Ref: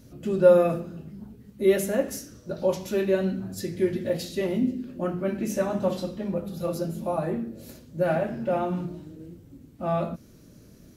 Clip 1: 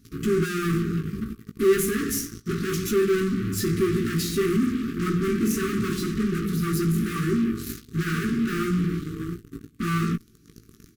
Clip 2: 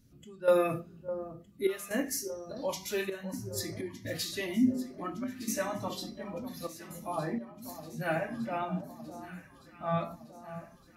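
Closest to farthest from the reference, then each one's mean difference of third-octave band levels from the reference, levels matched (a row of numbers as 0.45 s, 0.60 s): 2, 1; 6.5 dB, 10.0 dB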